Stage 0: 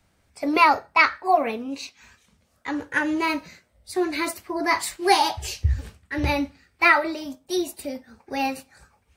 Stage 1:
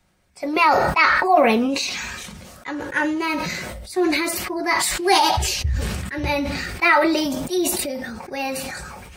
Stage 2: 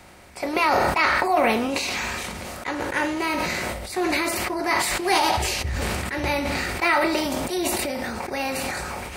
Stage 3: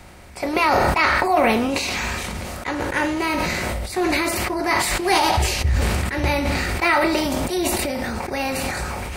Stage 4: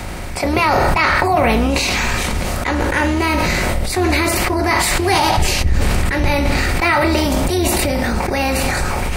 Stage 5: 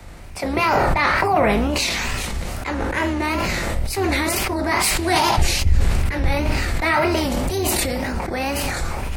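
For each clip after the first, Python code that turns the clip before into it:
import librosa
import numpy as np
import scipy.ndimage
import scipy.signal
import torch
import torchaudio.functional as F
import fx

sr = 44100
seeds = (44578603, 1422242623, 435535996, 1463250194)

y1 = x + 0.36 * np.pad(x, (int(5.5 * sr / 1000.0), 0))[:len(x)]
y1 = fx.sustainer(y1, sr, db_per_s=26.0)
y2 = fx.bin_compress(y1, sr, power=0.6)
y2 = F.gain(torch.from_numpy(y2), -7.0).numpy()
y3 = fx.low_shelf(y2, sr, hz=130.0, db=9.0)
y3 = F.gain(torch.from_numpy(y3), 2.0).numpy()
y4 = fx.octave_divider(y3, sr, octaves=2, level_db=1.0)
y4 = fx.env_flatten(y4, sr, amount_pct=50)
y5 = fx.wow_flutter(y4, sr, seeds[0], rate_hz=2.1, depth_cents=130.0)
y5 = fx.band_widen(y5, sr, depth_pct=70)
y5 = F.gain(torch.from_numpy(y5), -4.0).numpy()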